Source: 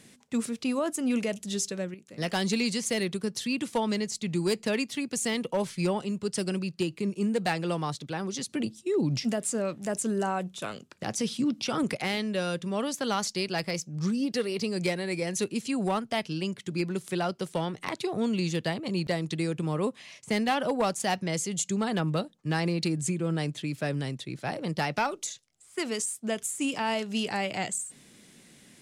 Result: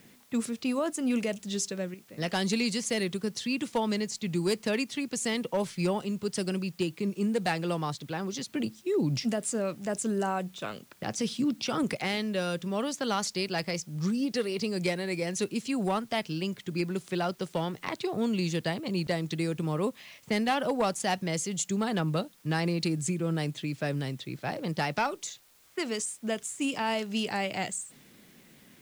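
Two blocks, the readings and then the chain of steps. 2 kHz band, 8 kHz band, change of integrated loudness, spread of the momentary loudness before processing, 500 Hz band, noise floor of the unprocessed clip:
-0.5 dB, -2.0 dB, -1.0 dB, 5 LU, -0.5 dB, -57 dBFS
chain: low-pass opened by the level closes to 2900 Hz, open at -24 dBFS; in parallel at -10.5 dB: requantised 8-bit, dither triangular; on the sum: gain -3 dB

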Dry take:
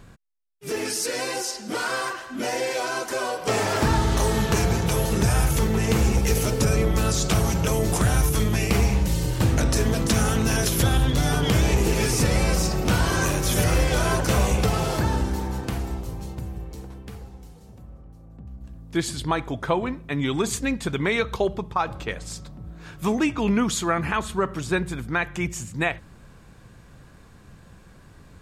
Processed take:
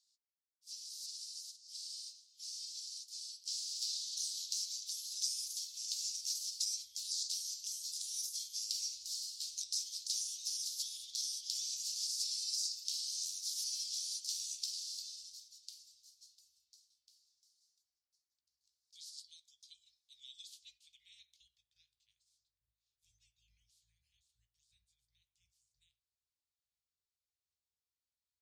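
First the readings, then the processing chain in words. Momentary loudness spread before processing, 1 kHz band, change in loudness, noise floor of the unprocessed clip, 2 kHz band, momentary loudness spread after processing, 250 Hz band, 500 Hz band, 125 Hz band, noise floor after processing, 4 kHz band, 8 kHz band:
12 LU, under -40 dB, -15.0 dB, -49 dBFS, under -40 dB, 14 LU, under -40 dB, under -40 dB, under -40 dB, under -85 dBFS, -7.5 dB, -9.0 dB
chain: spectral limiter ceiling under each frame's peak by 24 dB; inverse Chebyshev band-stop 310–1300 Hz, stop band 70 dB; doubler 17 ms -12 dB; band-pass sweep 4700 Hz -> 770 Hz, 19.99–22.74; upward expander 1.5:1, over -48 dBFS; gain -6.5 dB

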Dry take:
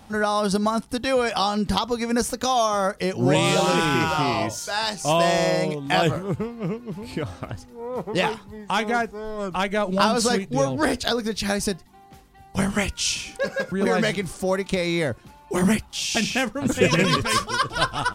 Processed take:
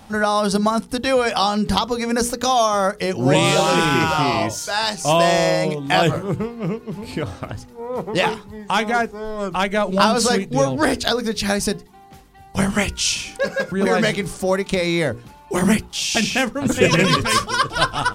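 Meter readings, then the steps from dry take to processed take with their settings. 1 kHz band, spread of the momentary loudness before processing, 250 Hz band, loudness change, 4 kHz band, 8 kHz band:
+4.0 dB, 10 LU, +3.5 dB, +3.5 dB, +4.0 dB, +4.0 dB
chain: notches 60/120/180/240/300/360/420/480 Hz; gain +4 dB

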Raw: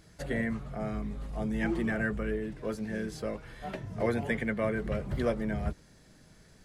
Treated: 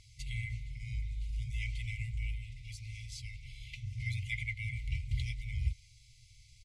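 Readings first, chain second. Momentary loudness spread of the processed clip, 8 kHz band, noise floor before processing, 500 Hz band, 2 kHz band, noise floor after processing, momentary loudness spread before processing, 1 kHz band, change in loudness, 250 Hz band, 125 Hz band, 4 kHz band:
9 LU, 0.0 dB, -58 dBFS, under -40 dB, -6.0 dB, -61 dBFS, 8 LU, under -40 dB, -6.5 dB, under -20 dB, 0.0 dB, +2.0 dB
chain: LPF 8300 Hz 12 dB/oct; speakerphone echo 0.19 s, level -18 dB; FFT band-reject 130–2000 Hz; gain +2 dB

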